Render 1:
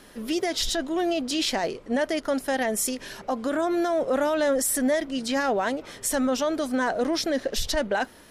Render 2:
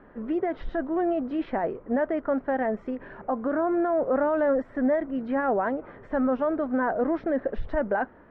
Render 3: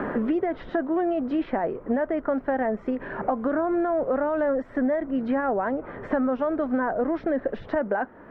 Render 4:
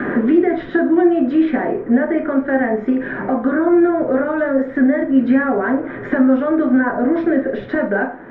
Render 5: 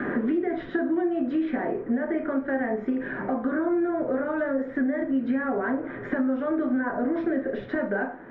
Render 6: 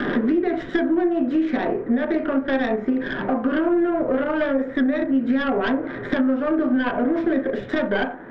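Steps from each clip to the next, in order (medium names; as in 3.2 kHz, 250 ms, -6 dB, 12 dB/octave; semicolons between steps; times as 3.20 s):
low-pass 1.6 kHz 24 dB/octave
three bands compressed up and down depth 100%
reverberation RT60 0.45 s, pre-delay 3 ms, DRR 1 dB
compression, threshold -14 dBFS, peak gain reduction 6.5 dB; trim -7.5 dB
tracing distortion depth 0.12 ms; trim +5 dB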